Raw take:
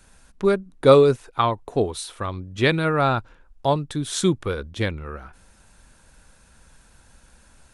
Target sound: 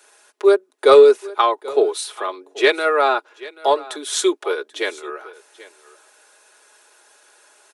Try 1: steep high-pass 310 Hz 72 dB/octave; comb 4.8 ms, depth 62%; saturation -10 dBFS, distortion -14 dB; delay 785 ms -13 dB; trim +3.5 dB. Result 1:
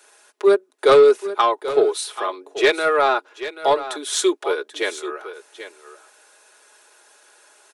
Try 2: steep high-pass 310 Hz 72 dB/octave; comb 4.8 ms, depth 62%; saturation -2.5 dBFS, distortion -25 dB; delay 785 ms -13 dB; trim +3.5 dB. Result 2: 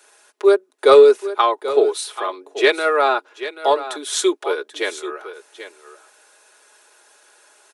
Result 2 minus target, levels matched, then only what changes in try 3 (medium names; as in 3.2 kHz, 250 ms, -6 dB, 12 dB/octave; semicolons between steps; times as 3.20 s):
echo-to-direct +6.5 dB
change: delay 785 ms -19.5 dB